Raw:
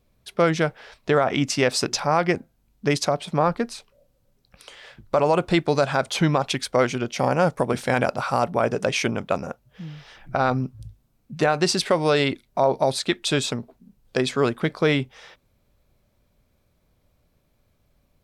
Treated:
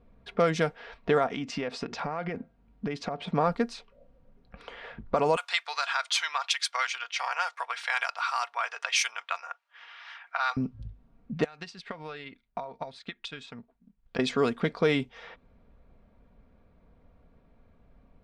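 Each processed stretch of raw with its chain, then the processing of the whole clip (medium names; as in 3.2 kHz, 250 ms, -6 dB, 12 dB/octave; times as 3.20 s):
1.26–3.25 s: high-pass 48 Hz + compression 8:1, threshold -27 dBFS
5.36–10.57 s: high-pass 980 Hz 24 dB/octave + tilt EQ +2.5 dB/octave
11.44–14.19 s: amplifier tone stack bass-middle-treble 5-5-5 + compression 3:1, threshold -40 dBFS + transient shaper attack +11 dB, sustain -5 dB
whole clip: comb 4.3 ms, depth 45%; level-controlled noise filter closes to 1.7 kHz, open at -14.5 dBFS; compression 1.5:1, threshold -47 dBFS; trim +5.5 dB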